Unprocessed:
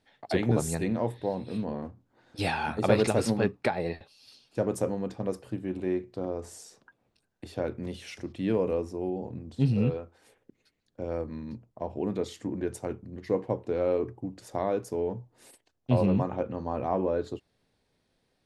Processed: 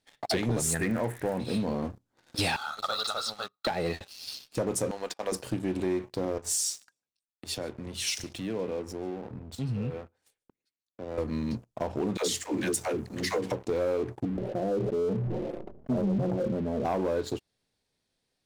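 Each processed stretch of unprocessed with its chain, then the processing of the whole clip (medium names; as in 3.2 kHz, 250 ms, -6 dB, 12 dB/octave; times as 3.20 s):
0.73–1.39 s: high-order bell 2.3 kHz +13 dB + crackle 110 per s -39 dBFS + Butterworth band-stop 3.8 kHz, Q 0.59
2.56–3.67 s: two resonant band-passes 2.2 kHz, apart 1.6 oct + comb 1.5 ms, depth 50%
4.91–5.32 s: gate -43 dBFS, range -10 dB + high-pass 680 Hz
6.38–11.18 s: compression 3:1, threshold -44 dBFS + feedback delay 149 ms, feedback 20%, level -21 dB + three bands expanded up and down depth 100%
12.17–13.52 s: tilt EQ +2 dB/octave + phase dispersion lows, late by 115 ms, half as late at 350 Hz + three bands compressed up and down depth 40%
14.25–16.85 s: flange 1.2 Hz, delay 4.5 ms, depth 1.4 ms, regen -10% + inverse Chebyshev low-pass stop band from 2 kHz, stop band 60 dB + decay stretcher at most 32 dB/s
whole clip: peaking EQ 7.6 kHz +9.5 dB 2.6 oct; compression 3:1, threshold -34 dBFS; waveshaping leveller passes 3; trim -3 dB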